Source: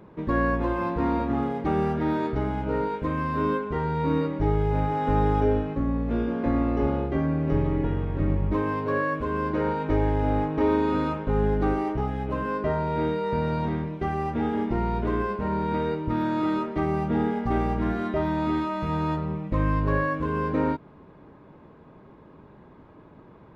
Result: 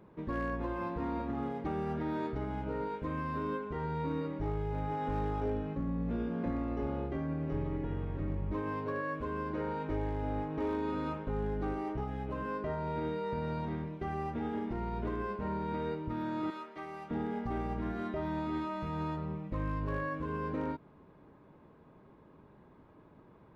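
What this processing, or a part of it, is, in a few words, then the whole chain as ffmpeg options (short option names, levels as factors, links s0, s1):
clipper into limiter: -filter_complex "[0:a]asettb=1/sr,asplit=3[s0][s1][s2];[s0]atrim=end=5.454[s3];[s1]atrim=start=5.45:end=6.5,asetpts=PTS-STARTPTS,afade=t=in:d=0.004:c=qsin,afade=t=out:st=1.046:d=0.004:c=qsin,equalizer=f=180:t=o:w=0.3:g=10[s4];[s2]atrim=start=6.496[s5];[s3][s4]acrossfade=d=0.004:c1=hsin:c2=qsin[s6];[s6][s5]acrossfade=d=0.004:c1=qsin:c2=hsin,asettb=1/sr,asplit=3[s7][s8][s9];[s7]atrim=end=16.504[s10];[s8]atrim=start=16.5:end=17.11,asetpts=PTS-STARTPTS,afade=t=in:d=0.004:c=qsin,afade=t=out:st=0.606:d=0.004:c=qsin,highpass=f=1300:p=1[s11];[s9]atrim=start=17.106[s12];[s10][s11]acrossfade=d=0.004:c1=hsin:c2=qsin[s13];[s13][s12]acrossfade=d=0.004:c1=qsin:c2=hsin,asoftclip=type=hard:threshold=0.168,alimiter=limit=0.119:level=0:latency=1:release=78,volume=0.376"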